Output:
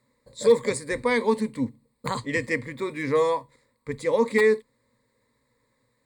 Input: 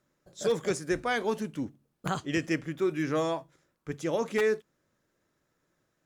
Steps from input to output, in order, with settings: rippled EQ curve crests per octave 0.97, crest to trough 17 dB; trim +2.5 dB

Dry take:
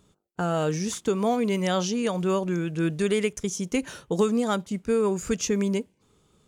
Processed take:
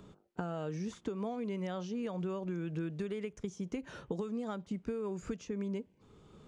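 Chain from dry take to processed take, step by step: treble shelf 6.8 kHz +10.5 dB; compression 12:1, threshold -33 dBFS, peak gain reduction 16 dB; tape spacing loss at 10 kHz 27 dB; three bands compressed up and down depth 40%

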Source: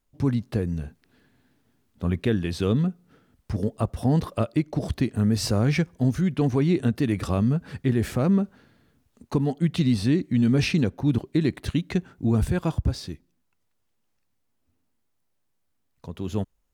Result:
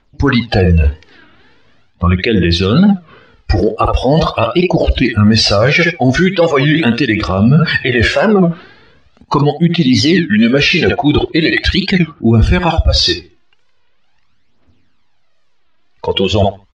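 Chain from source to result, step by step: dynamic bell 140 Hz, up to -3 dB, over -32 dBFS, Q 1.1; on a send: feedback delay 71 ms, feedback 25%, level -10.5 dB; on the sum: spectral noise reduction 16 dB; tilt shelf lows -4.5 dB, about 690 Hz; phaser 0.41 Hz, delay 2.9 ms, feedback 58%; low-pass 4.5 kHz 24 dB/octave; reverse; compression 20:1, threshold -37 dBFS, peak gain reduction 22 dB; reverse; loudness maximiser +34 dB; warped record 33 1/3 rpm, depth 250 cents; trim -1 dB

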